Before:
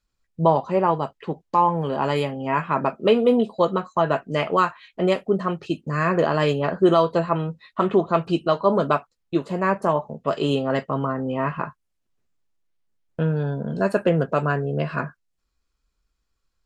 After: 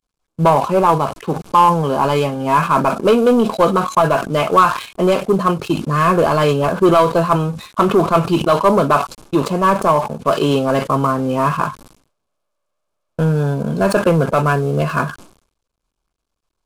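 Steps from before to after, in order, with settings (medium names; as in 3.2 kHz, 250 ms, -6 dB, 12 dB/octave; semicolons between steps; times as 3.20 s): CVSD coder 64 kbps; waveshaping leveller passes 2; peaking EQ 1.1 kHz +5.5 dB 0.43 oct; band-stop 1.9 kHz, Q 5.7; decay stretcher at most 110 dB/s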